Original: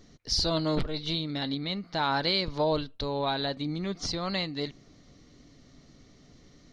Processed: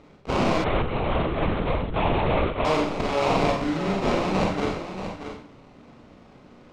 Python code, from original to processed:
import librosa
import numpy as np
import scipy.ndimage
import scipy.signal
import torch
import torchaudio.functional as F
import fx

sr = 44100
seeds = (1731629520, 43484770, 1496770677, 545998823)

p1 = scipy.signal.sosfilt(scipy.signal.butter(2, 63.0, 'highpass', fs=sr, output='sos'), x)
p2 = fx.tilt_eq(p1, sr, slope=1.5)
p3 = fx.hum_notches(p2, sr, base_hz=50, count=4)
p4 = fx.over_compress(p3, sr, threshold_db=-29.0, ratio=-0.5)
p5 = p3 + (p4 * librosa.db_to_amplitude(1.5))
p6 = fx.vibrato(p5, sr, rate_hz=2.1, depth_cents=6.7)
p7 = fx.sample_hold(p6, sr, seeds[0], rate_hz=1700.0, jitter_pct=20)
p8 = fx.air_absorb(p7, sr, metres=130.0)
p9 = p8 + fx.echo_single(p8, sr, ms=631, db=-9.5, dry=0)
p10 = fx.rev_schroeder(p9, sr, rt60_s=0.48, comb_ms=30, drr_db=-1.0)
p11 = fx.lpc_vocoder(p10, sr, seeds[1], excitation='whisper', order=10, at=(0.64, 2.65))
y = p11 * librosa.db_to_amplitude(-2.0)